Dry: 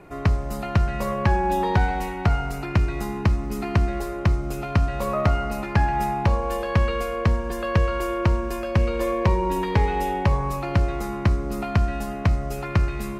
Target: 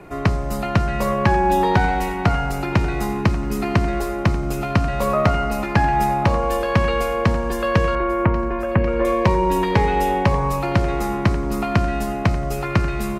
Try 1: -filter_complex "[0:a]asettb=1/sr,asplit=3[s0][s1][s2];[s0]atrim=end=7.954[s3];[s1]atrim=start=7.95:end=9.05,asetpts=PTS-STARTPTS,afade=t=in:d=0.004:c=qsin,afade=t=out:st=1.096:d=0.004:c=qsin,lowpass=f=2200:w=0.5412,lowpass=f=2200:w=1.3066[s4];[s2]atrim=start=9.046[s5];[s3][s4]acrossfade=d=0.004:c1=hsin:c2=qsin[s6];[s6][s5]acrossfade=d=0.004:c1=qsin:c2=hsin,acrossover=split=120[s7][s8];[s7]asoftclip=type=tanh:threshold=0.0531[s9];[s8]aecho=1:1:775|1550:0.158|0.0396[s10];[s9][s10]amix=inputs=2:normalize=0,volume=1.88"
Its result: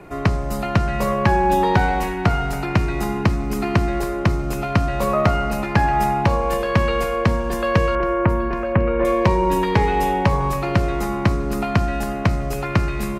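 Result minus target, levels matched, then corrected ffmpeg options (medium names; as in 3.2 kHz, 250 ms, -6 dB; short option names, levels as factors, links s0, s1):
echo 313 ms early
-filter_complex "[0:a]asettb=1/sr,asplit=3[s0][s1][s2];[s0]atrim=end=7.954[s3];[s1]atrim=start=7.95:end=9.05,asetpts=PTS-STARTPTS,afade=t=in:d=0.004:c=qsin,afade=t=out:st=1.096:d=0.004:c=qsin,lowpass=f=2200:w=0.5412,lowpass=f=2200:w=1.3066[s4];[s2]atrim=start=9.046[s5];[s3][s4]acrossfade=d=0.004:c1=hsin:c2=qsin[s6];[s6][s5]acrossfade=d=0.004:c1=qsin:c2=hsin,acrossover=split=120[s7][s8];[s7]asoftclip=type=tanh:threshold=0.0531[s9];[s8]aecho=1:1:1088|2176:0.158|0.0396[s10];[s9][s10]amix=inputs=2:normalize=0,volume=1.88"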